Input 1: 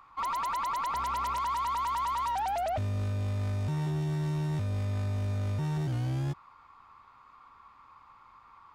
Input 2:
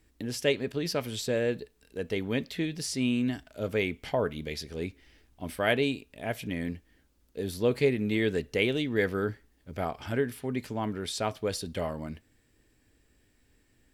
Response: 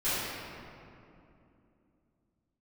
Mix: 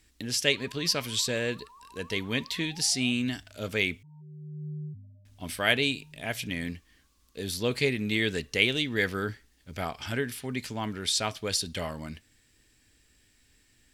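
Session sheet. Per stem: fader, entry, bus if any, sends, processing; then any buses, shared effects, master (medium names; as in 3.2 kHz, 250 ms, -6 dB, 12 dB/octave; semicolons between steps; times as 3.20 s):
-2.5 dB, 0.35 s, no send, high-pass 140 Hz 12 dB/octave; loudest bins only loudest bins 4; auto duck -17 dB, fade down 0.40 s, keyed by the second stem
0.0 dB, 0.00 s, muted 4.03–5.25 s, no send, peaking EQ 5.5 kHz +9.5 dB 2.9 oct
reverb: none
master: peaking EQ 490 Hz -4.5 dB 1.7 oct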